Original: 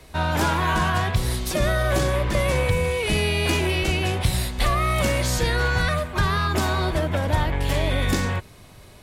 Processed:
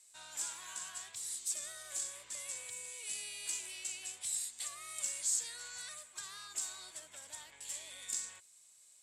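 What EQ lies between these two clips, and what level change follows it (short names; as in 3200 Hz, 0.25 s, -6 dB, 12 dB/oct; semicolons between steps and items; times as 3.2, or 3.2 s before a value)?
band-pass 7700 Hz, Q 6.7; +4.0 dB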